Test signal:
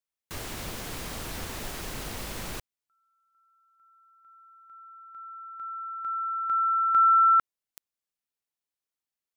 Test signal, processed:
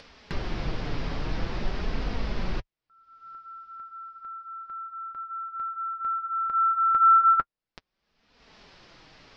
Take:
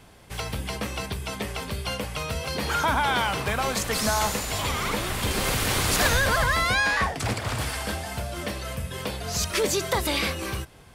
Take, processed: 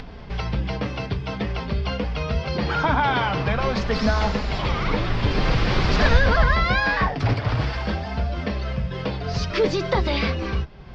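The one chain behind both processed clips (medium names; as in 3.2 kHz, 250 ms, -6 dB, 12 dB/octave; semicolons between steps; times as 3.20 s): elliptic low-pass 5.2 kHz, stop band 80 dB; tilt EQ -2 dB/octave; in parallel at +1 dB: upward compressor 4:1, threshold -30 dBFS; on the sum: flange 0.48 Hz, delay 4 ms, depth 3.3 ms, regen -38%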